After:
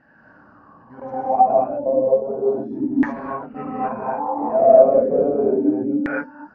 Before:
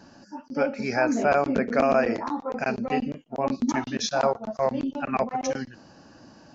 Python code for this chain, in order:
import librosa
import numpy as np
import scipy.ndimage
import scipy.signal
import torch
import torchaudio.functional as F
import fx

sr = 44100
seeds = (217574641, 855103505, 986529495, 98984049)

y = np.flip(x).copy()
y = fx.rev_gated(y, sr, seeds[0], gate_ms=280, shape='rising', drr_db=-7.5)
y = fx.filter_lfo_lowpass(y, sr, shape='saw_down', hz=0.33, low_hz=290.0, high_hz=1800.0, q=7.6)
y = y * librosa.db_to_amplitude(-10.0)